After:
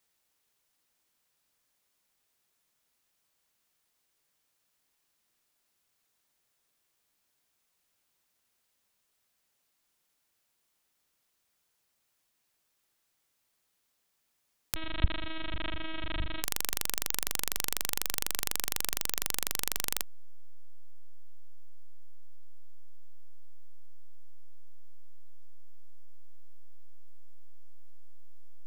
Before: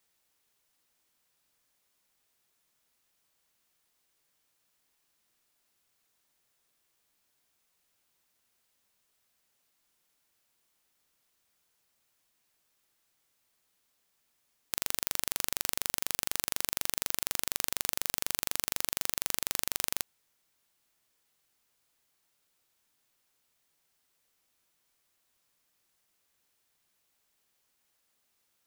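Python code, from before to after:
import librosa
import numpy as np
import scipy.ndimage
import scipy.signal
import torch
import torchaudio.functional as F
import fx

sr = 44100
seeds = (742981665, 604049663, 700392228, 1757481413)

p1 = fx.backlash(x, sr, play_db=-14.5)
p2 = x + F.gain(torch.from_numpy(p1), -11.0).numpy()
p3 = fx.lpc_vocoder(p2, sr, seeds[0], excitation='pitch_kept', order=8, at=(14.74, 16.44))
y = F.gain(torch.from_numpy(p3), -1.5).numpy()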